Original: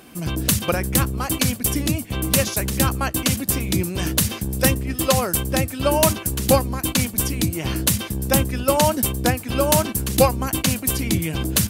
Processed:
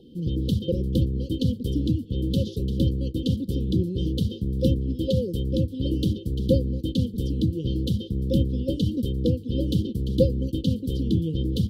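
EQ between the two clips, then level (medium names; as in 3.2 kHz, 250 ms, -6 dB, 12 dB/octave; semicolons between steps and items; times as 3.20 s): brick-wall FIR band-stop 540–1300 Hz; Chebyshev band-stop 810–3100 Hz, order 5; distance through air 370 m; 0.0 dB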